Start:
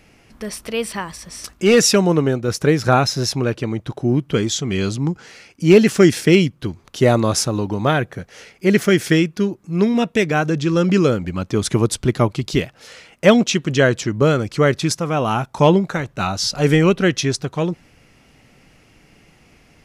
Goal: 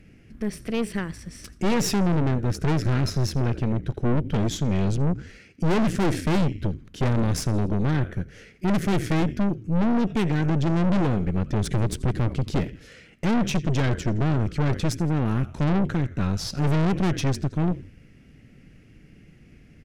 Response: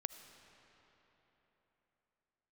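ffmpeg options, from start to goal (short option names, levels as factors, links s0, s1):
-filter_complex "[0:a]firequalizer=gain_entry='entry(200,0);entry(900,-21);entry(1600,-8);entry(4000,-15)':delay=0.05:min_phase=1,asplit=4[s0][s1][s2][s3];[s1]adelay=83,afreqshift=-43,volume=0.1[s4];[s2]adelay=166,afreqshift=-86,volume=0.0442[s5];[s3]adelay=249,afreqshift=-129,volume=0.0193[s6];[s0][s4][s5][s6]amix=inputs=4:normalize=0,asplit=2[s7][s8];[1:a]atrim=start_sample=2205,afade=t=out:st=0.17:d=0.01,atrim=end_sample=7938[s9];[s8][s9]afir=irnorm=-1:irlink=0,volume=0.596[s10];[s7][s10]amix=inputs=2:normalize=0,aeval=exprs='(tanh(15.8*val(0)+0.7)-tanh(0.7))/15.8':c=same,volume=1.58" -ar 48000 -c:a libvorbis -b:a 192k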